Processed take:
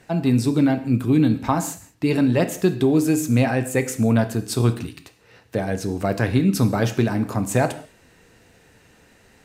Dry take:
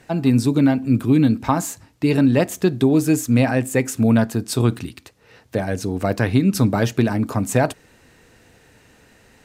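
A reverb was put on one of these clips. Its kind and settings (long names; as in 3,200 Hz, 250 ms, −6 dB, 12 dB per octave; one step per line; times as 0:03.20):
reverb whose tail is shaped and stops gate 220 ms falling, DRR 9 dB
level −2 dB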